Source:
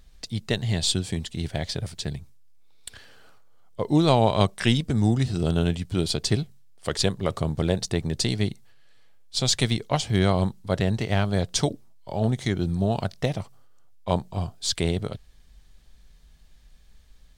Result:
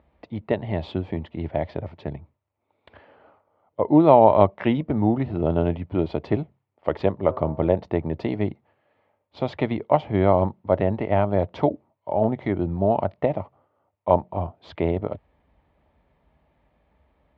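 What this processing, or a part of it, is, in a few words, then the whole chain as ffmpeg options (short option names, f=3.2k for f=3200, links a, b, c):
bass cabinet: -filter_complex "[0:a]highpass=f=74:w=0.5412,highpass=f=74:w=1.3066,equalizer=f=120:t=q:w=4:g=-10,equalizer=f=180:t=q:w=4:g=-4,equalizer=f=310:t=q:w=4:g=4,equalizer=f=600:t=q:w=4:g=8,equalizer=f=900:t=q:w=4:g=7,equalizer=f=1.6k:t=q:w=4:g=-9,lowpass=f=2.1k:w=0.5412,lowpass=f=2.1k:w=1.3066,asplit=3[a][b][c];[a]afade=t=out:st=7.27:d=0.02[d];[b]bandreject=f=127.6:t=h:w=4,bandreject=f=255.2:t=h:w=4,bandreject=f=382.8:t=h:w=4,bandreject=f=510.4:t=h:w=4,bandreject=f=638:t=h:w=4,bandreject=f=765.6:t=h:w=4,bandreject=f=893.2:t=h:w=4,bandreject=f=1.0208k:t=h:w=4,bandreject=f=1.1484k:t=h:w=4,bandreject=f=1.276k:t=h:w=4,bandreject=f=1.4036k:t=h:w=4,bandreject=f=1.5312k:t=h:w=4,bandreject=f=1.6588k:t=h:w=4,afade=t=in:st=7.27:d=0.02,afade=t=out:st=7.67:d=0.02[e];[c]afade=t=in:st=7.67:d=0.02[f];[d][e][f]amix=inputs=3:normalize=0,volume=2dB"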